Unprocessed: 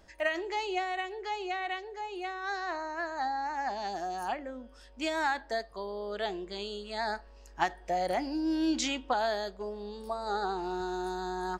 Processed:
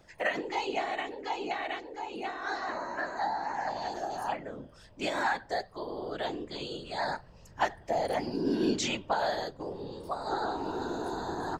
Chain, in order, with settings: whisperiser

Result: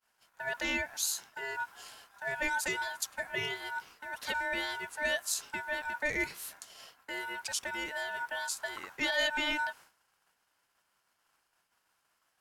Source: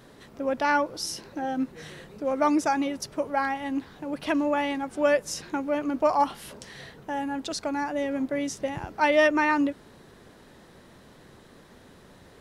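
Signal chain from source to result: expander -40 dBFS; ring modulator 1200 Hz; in parallel at -1 dB: limiter -18.5 dBFS, peak gain reduction 7 dB; on the sum: pre-emphasis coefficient 0.8

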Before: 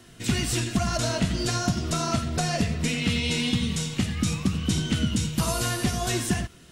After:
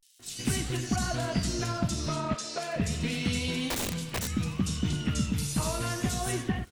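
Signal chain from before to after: crackle 71/s -37 dBFS; 2.17–2.57 Chebyshev band-pass 470–8000 Hz, order 2; bands offset in time highs, lows 0.17 s, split 3300 Hz; 3.69–4.33 wrapped overs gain 21.5 dB; vibrato 0.33 Hz 97 cents; gain -4 dB

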